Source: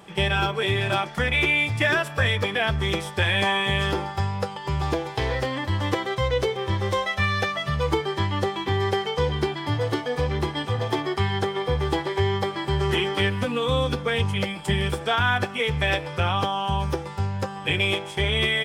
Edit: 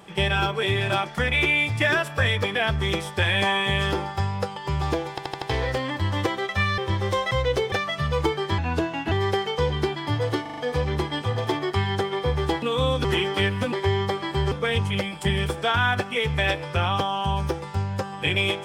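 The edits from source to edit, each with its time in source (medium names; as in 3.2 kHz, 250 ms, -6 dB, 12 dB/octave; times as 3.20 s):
5.10 s: stutter 0.08 s, 5 plays
6.17–6.58 s: swap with 7.11–7.40 s
8.26–8.71 s: speed 84%
10.01 s: stutter 0.04 s, 5 plays
12.06–12.85 s: swap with 13.53–13.95 s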